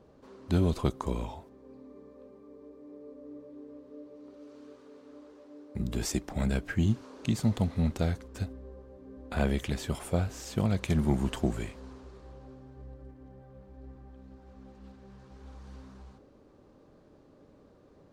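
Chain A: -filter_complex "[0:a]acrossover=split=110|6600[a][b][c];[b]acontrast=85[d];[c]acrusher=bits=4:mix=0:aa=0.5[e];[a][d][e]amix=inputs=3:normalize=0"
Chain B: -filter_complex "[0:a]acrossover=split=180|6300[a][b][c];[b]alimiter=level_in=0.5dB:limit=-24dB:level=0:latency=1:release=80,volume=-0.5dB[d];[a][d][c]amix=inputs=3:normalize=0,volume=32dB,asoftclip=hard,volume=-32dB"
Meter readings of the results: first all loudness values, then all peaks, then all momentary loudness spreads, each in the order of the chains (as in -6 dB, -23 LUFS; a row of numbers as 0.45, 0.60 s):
-25.5, -40.5 LUFS; -8.0, -32.0 dBFS; 22, 18 LU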